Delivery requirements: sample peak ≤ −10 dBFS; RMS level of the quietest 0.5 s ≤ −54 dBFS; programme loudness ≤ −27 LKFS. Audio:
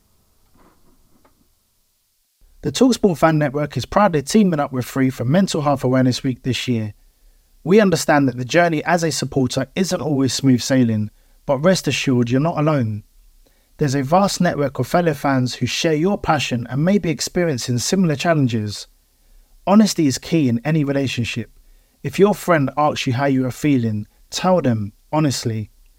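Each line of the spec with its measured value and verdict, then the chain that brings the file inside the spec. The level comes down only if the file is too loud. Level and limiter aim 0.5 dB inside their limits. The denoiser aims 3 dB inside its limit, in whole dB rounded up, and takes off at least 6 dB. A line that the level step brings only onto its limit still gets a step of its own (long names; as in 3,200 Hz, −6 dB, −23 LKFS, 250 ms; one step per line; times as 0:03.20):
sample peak −2.0 dBFS: out of spec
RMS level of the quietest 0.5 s −65 dBFS: in spec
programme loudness −18.5 LKFS: out of spec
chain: level −9 dB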